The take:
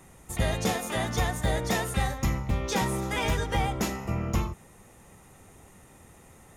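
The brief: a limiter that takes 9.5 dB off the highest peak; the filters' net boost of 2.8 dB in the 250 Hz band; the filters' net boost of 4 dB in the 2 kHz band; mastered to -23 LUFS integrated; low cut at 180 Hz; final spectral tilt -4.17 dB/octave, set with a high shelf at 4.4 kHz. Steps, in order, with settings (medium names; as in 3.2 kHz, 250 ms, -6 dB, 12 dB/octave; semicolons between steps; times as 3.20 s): high-pass 180 Hz; peaking EQ 250 Hz +6 dB; peaking EQ 2 kHz +3.5 dB; treble shelf 4.4 kHz +5.5 dB; trim +7 dB; peak limiter -12.5 dBFS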